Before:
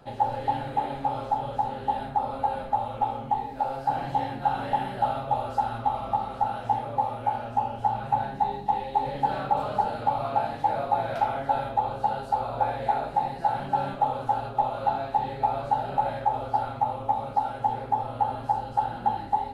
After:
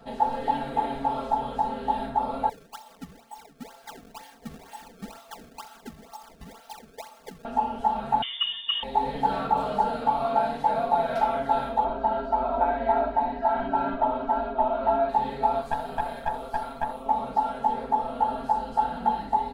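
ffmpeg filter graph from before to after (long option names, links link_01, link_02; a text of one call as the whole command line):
ffmpeg -i in.wav -filter_complex "[0:a]asettb=1/sr,asplit=3[link_01][link_02][link_03];[link_01]atrim=end=2.494[link_04];[link_02]atrim=start=2.49:end=7.45,asetpts=PTS-STARTPTS,afade=type=in:duration=0.004:curve=qsin,afade=type=out:start_time=4.956:duration=0.004:curve=qsin,aderivative,acrusher=samples=26:mix=1:aa=0.000001:lfo=1:lforange=41.6:lforate=2.1[link_05];[link_03]atrim=start=7.446[link_06];[link_04][link_05]acrossfade=duration=0.004:curve1=hsin:curve2=qsin[link_07];[link_07][link_06]acrossfade=duration=0.004:curve1=qsin:curve2=hsin,asettb=1/sr,asplit=3[link_08][link_09][link_10];[link_08]atrim=end=8.224[link_11];[link_09]atrim=start=8.22:end=8.83,asetpts=PTS-STARTPTS,afade=type=in:duration=0.004:curve=qsin,afade=type=out:start_time=0.606:duration=0.004:curve=qsin,highpass=58,volume=16dB,asoftclip=hard,volume=-16dB,lowpass=frequency=3100:width_type=q:width=0.5098,lowpass=frequency=3100:width_type=q:width=0.6013,lowpass=frequency=3100:width_type=q:width=0.9,lowpass=frequency=3100:width_type=q:width=2.563,afreqshift=-3700[link_12];[link_10]atrim=start=8.826[link_13];[link_11][link_12]acrossfade=duration=0.004:curve1=hsin:curve2=qsin[link_14];[link_14][link_13]acrossfade=duration=0.004:curve1=qsin:curve2=hsin,asettb=1/sr,asplit=3[link_15][link_16][link_17];[link_15]atrim=end=11.844[link_18];[link_16]atrim=start=11.84:end=15.09,asetpts=PTS-STARTPTS,afade=type=in:duration=0.004:curve=qsin,afade=type=out:start_time=3.246:duration=0.004:curve=qsin,lowpass=2300,aecho=1:1:3.1:0.83,atrim=end_sample=143325[link_19];[link_17]atrim=start=15.086[link_20];[link_18][link_19]acrossfade=duration=0.004:curve1=hsin:curve2=qsin[link_21];[link_21][link_20]acrossfade=duration=0.004:curve1=qsin:curve2=hsin,asettb=1/sr,asplit=3[link_22][link_23][link_24];[link_22]atrim=end=15.614[link_25];[link_23]atrim=start=15.61:end=17.06,asetpts=PTS-STARTPTS,afade=type=in:duration=0.004:curve=qsin,afade=type=out:start_time=1.446:duration=0.004:curve=qsin,aemphasis=mode=production:type=50kf,aeval=exprs='(tanh(6.31*val(0)+0.6)-tanh(0.6))/6.31':channel_layout=same,tremolo=f=150:d=0.621[link_26];[link_24]atrim=start=17.056[link_27];[link_25][link_26]acrossfade=duration=0.004:curve1=hsin:curve2=qsin[link_28];[link_28][link_27]acrossfade=duration=0.004:curve1=qsin:curve2=hsin,equalizer=frequency=2500:width=1.5:gain=-2.5,aecho=1:1:4.4:0.99" out.wav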